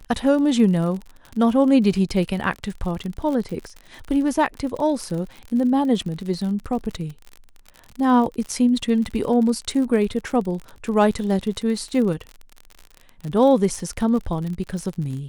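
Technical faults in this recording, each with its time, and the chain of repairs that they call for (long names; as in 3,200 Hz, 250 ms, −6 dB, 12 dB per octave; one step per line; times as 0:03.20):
surface crackle 54 per second −29 dBFS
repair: click removal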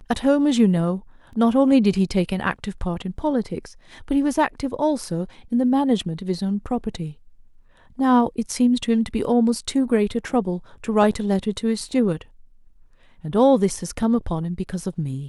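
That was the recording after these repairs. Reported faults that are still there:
none of them is left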